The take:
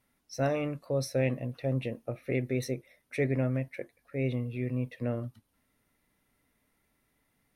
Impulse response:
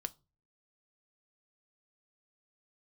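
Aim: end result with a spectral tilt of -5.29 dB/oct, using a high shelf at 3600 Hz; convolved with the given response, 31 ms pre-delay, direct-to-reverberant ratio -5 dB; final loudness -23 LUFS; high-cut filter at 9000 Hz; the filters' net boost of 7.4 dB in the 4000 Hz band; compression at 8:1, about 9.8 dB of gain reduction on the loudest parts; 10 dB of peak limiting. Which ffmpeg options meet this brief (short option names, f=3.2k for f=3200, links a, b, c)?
-filter_complex "[0:a]lowpass=9k,highshelf=f=3.6k:g=5.5,equalizer=f=4k:t=o:g=6,acompressor=threshold=-34dB:ratio=8,alimiter=level_in=9dB:limit=-24dB:level=0:latency=1,volume=-9dB,asplit=2[a][b];[1:a]atrim=start_sample=2205,adelay=31[c];[b][c]afir=irnorm=-1:irlink=0,volume=6.5dB[d];[a][d]amix=inputs=2:normalize=0,volume=14dB"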